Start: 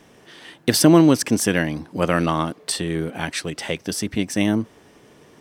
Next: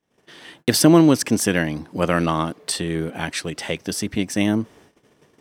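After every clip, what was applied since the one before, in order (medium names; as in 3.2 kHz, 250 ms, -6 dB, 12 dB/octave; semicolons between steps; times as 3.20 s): gate -48 dBFS, range -29 dB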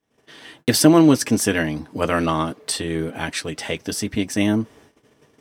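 comb of notches 180 Hz; trim +1.5 dB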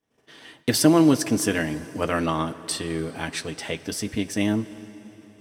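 plate-style reverb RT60 3.9 s, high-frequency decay 0.85×, DRR 14.5 dB; trim -4 dB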